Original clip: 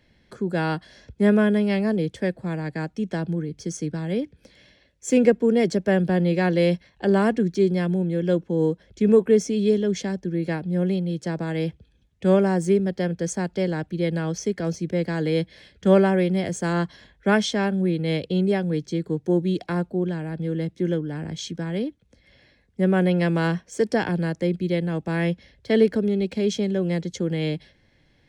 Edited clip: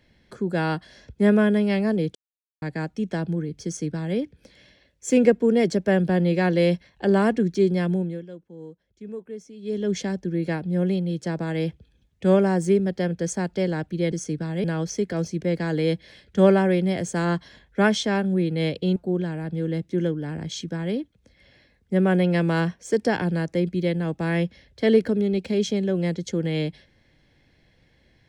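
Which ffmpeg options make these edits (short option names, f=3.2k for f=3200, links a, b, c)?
-filter_complex "[0:a]asplit=8[a][b][c][d][e][f][g][h];[a]atrim=end=2.15,asetpts=PTS-STARTPTS,afade=t=out:st=2.146:d=0.004:c=hsin[i];[b]atrim=start=2.15:end=2.62,asetpts=PTS-STARTPTS,volume=0[j];[c]atrim=start=2.62:end=8.26,asetpts=PTS-STARTPTS,afade=t=in:d=0.004:c=hsin,afade=t=out:st=5.33:d=0.31:silence=0.112202[k];[d]atrim=start=8.26:end=9.62,asetpts=PTS-STARTPTS,volume=-19dB[l];[e]atrim=start=9.62:end=14.122,asetpts=PTS-STARTPTS,afade=t=in:d=0.31:silence=0.112202[m];[f]atrim=start=3.648:end=4.172[n];[g]atrim=start=14.118:end=18.442[o];[h]atrim=start=19.828[p];[i][j][k][l][m]concat=n=5:v=0:a=1[q];[q][n]acrossfade=d=0.004:c1=hsin:c2=hsin[r];[r][o]acrossfade=d=0.004:c1=hsin:c2=hsin[s];[s][p]acrossfade=d=0.004:c1=hsin:c2=hsin"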